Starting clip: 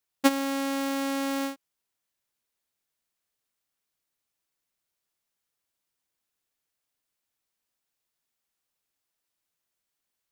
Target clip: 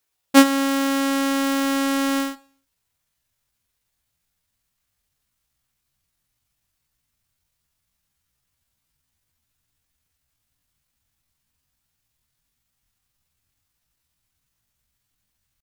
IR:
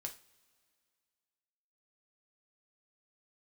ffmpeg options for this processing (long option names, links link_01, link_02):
-filter_complex "[0:a]asubboost=boost=8.5:cutoff=140,atempo=0.66,asplit=2[link_01][link_02];[1:a]atrim=start_sample=2205,afade=type=out:start_time=0.31:duration=0.01,atrim=end_sample=14112,asetrate=35721,aresample=44100[link_03];[link_02][link_03]afir=irnorm=-1:irlink=0,volume=-5dB[link_04];[link_01][link_04]amix=inputs=2:normalize=0,volume=5dB"